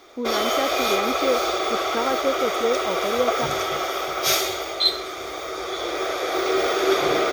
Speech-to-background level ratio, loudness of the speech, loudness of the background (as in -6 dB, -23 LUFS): -4.0 dB, -27.0 LUFS, -23.0 LUFS